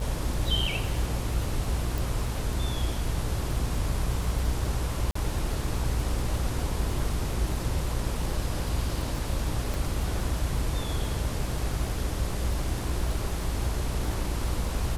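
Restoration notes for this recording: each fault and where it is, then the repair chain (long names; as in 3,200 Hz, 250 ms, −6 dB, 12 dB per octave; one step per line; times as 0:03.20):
mains buzz 60 Hz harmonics 30 −33 dBFS
surface crackle 45 per second −34 dBFS
0:01.98: click
0:05.11–0:05.15: drop-out 44 ms
0:09.74: click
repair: click removal
hum removal 60 Hz, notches 30
repair the gap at 0:05.11, 44 ms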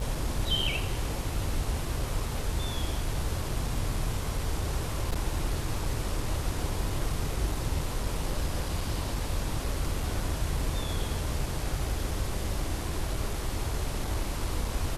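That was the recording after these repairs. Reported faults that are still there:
0:09.74: click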